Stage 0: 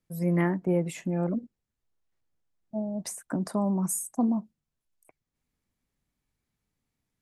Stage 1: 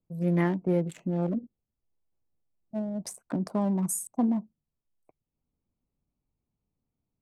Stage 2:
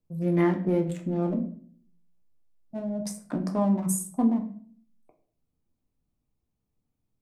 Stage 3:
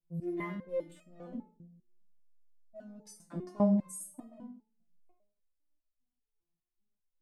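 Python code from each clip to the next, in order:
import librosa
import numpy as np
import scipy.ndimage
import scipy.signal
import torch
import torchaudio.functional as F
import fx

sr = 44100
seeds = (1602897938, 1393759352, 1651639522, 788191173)

y1 = fx.wiener(x, sr, points=25)
y2 = fx.room_shoebox(y1, sr, seeds[0], volume_m3=57.0, walls='mixed', distance_m=0.44)
y3 = fx.resonator_held(y2, sr, hz=5.0, low_hz=170.0, high_hz=630.0)
y3 = y3 * librosa.db_to_amplitude(2.0)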